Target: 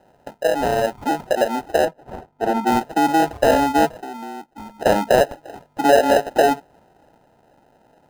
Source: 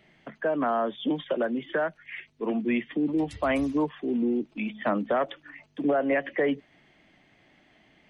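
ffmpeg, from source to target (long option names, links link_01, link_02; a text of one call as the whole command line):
ffmpeg -i in.wav -filter_complex "[0:a]acrusher=samples=39:mix=1:aa=0.000001,asettb=1/sr,asplit=3[link_01][link_02][link_03];[link_01]atrim=end=1.854[link_04];[link_02]atrim=start=1.85:end=2.67,asetpts=PTS-STARTPTS,afade=type=in:duration=0.004:curve=qsin,afade=type=out:start_time=0.816:duration=0.004:curve=qsin,highshelf=frequency=2300:gain=-9[link_05];[link_03]atrim=start=2.666[link_06];[link_04][link_05]acrossfade=duration=0.004:curve1=hsin:curve2=qsin[link_07];[link_07][link_06]acrossfade=duration=0.004:curve1=qsin:curve2=hsin,asettb=1/sr,asplit=3[link_08][link_09][link_10];[link_08]atrim=end=4.024[link_11];[link_09]atrim=start=4.02:end=4.8,asetpts=PTS-STARTPTS,afade=type=in:duration=0.004:curve=qsin,afade=type=out:start_time=0.776:duration=0.004:curve=qsin,acompressor=threshold=-45dB:ratio=3[link_12];[link_10]atrim=start=4.796[link_13];[link_11][link_12]acrossfade=duration=0.004:curve1=hsin:curve2=qsin[link_14];[link_14][link_13]acrossfade=duration=0.004:curve1=qsin:curve2=hsin,equalizer=frequency=790:width_type=o:width=1.4:gain=13.5,dynaudnorm=framelen=330:gausssize=11:maxgain=11.5dB,volume=-1dB" out.wav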